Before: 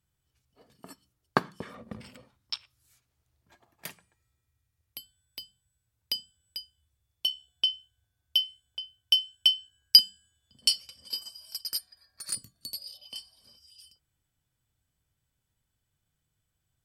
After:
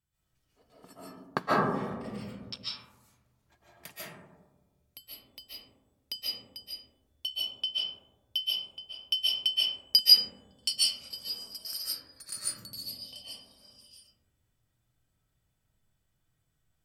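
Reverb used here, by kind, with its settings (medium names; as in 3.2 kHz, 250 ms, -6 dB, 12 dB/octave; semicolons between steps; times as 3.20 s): algorithmic reverb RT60 1.3 s, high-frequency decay 0.25×, pre-delay 105 ms, DRR -9.5 dB; trim -7 dB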